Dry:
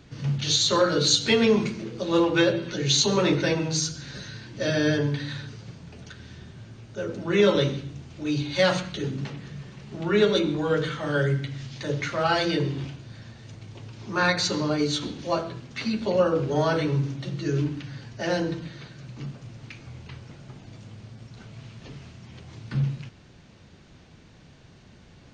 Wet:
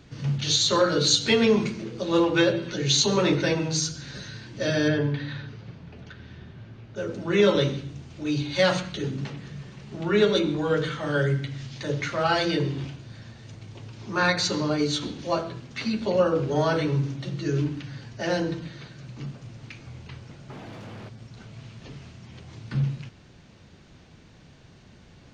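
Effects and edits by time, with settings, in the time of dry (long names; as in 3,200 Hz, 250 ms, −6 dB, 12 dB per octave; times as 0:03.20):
0:04.88–0:06.96: low-pass filter 3,300 Hz
0:20.50–0:21.09: mid-hump overdrive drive 28 dB, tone 1,000 Hz, clips at −30.5 dBFS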